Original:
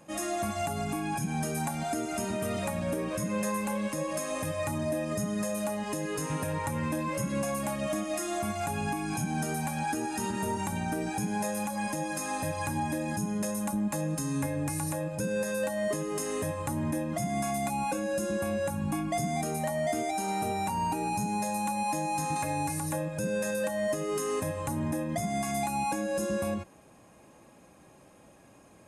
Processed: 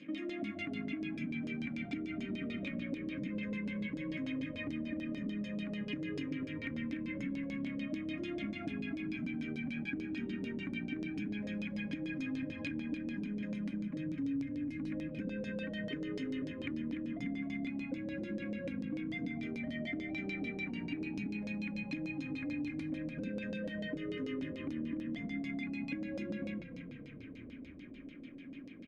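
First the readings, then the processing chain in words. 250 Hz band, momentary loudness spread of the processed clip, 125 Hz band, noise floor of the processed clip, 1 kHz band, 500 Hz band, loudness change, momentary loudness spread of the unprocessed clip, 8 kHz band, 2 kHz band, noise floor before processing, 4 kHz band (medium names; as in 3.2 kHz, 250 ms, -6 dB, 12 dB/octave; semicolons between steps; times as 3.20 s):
-4.0 dB, 2 LU, -10.5 dB, -49 dBFS, -26.5 dB, -14.0 dB, -8.0 dB, 2 LU, under -30 dB, -5.0 dB, -56 dBFS, -7.0 dB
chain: vowel filter i; LFO low-pass saw down 6.8 Hz 480–5200 Hz; compression, threshold -53 dBFS, peak gain reduction 21 dB; frequency-shifting echo 294 ms, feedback 63%, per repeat -32 Hz, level -10.5 dB; trim +15.5 dB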